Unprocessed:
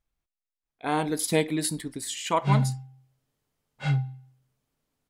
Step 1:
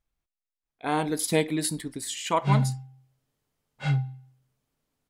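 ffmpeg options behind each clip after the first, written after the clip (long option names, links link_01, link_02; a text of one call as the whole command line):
ffmpeg -i in.wav -af anull out.wav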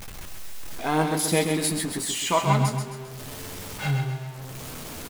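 ffmpeg -i in.wav -filter_complex "[0:a]aeval=exprs='val(0)+0.5*0.0237*sgn(val(0))':channel_layout=same,flanger=delay=9.7:depth=3.1:regen=45:speed=0.51:shape=triangular,asplit=2[link_01][link_02];[link_02]aecho=0:1:132|264|396|528|660:0.501|0.221|0.097|0.0427|0.0188[link_03];[link_01][link_03]amix=inputs=2:normalize=0,volume=5dB" out.wav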